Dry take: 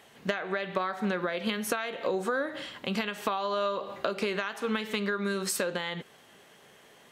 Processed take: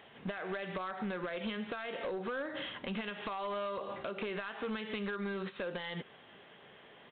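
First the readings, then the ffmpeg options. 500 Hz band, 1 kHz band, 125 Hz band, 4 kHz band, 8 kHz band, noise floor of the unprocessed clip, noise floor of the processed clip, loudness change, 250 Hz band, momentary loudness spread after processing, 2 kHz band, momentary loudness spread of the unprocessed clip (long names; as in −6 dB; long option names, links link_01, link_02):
−7.5 dB, −8.0 dB, −5.5 dB, −8.0 dB, below −40 dB, −57 dBFS, −57 dBFS, −7.5 dB, −6.5 dB, 16 LU, −7.5 dB, 4 LU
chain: -af "acompressor=threshold=-33dB:ratio=6,aresample=8000,asoftclip=type=hard:threshold=-32.5dB,aresample=44100"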